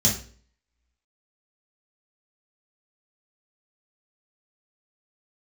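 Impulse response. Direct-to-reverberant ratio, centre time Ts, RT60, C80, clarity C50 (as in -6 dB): -6.0 dB, 28 ms, 0.45 s, 12.5 dB, 7.0 dB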